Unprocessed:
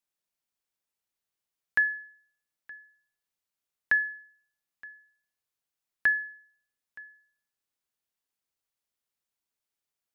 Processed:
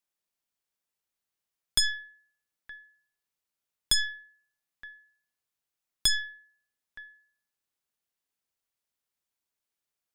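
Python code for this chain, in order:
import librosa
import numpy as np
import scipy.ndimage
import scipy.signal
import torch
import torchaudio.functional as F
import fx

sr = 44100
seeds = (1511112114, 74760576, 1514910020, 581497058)

y = fx.tracing_dist(x, sr, depth_ms=0.45)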